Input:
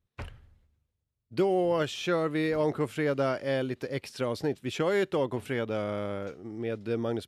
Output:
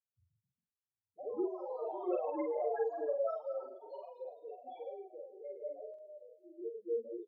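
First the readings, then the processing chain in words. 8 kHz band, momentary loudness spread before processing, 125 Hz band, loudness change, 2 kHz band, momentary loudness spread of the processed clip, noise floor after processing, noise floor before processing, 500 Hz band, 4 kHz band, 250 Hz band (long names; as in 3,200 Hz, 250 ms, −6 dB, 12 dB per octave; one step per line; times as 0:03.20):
below −30 dB, 10 LU, below −40 dB, −9.5 dB, −23.5 dB, 14 LU, below −85 dBFS, −82 dBFS, −8.5 dB, below −35 dB, −14.0 dB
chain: lower of the sound and its delayed copy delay 0.55 ms
Chebyshev low-pass filter 4,200 Hz, order 3
low-shelf EQ 140 Hz −9 dB
transient designer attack +9 dB, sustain −9 dB
spectral peaks only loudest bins 1
band-pass filter sweep 1,200 Hz → 390 Hz, 0:06.05–0:06.71
echo through a band-pass that steps 108 ms, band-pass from 3,000 Hz, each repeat −0.7 octaves, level −7 dB
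band-pass filter sweep 240 Hz → 1,300 Hz, 0:01.40–0:04.45
delay with pitch and tempo change per echo 164 ms, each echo +4 semitones, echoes 3, each echo −6 dB
double-tracking delay 45 ms −2.5 dB
level +17.5 dB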